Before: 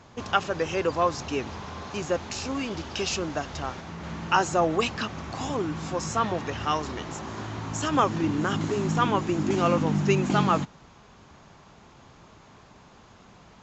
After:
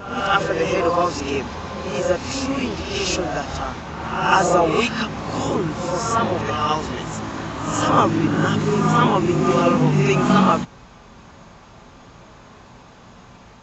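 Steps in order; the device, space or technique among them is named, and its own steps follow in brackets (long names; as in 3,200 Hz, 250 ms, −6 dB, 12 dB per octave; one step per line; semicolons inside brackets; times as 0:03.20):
reverse reverb (reversed playback; convolution reverb RT60 1.0 s, pre-delay 5 ms, DRR −1 dB; reversed playback)
level +3.5 dB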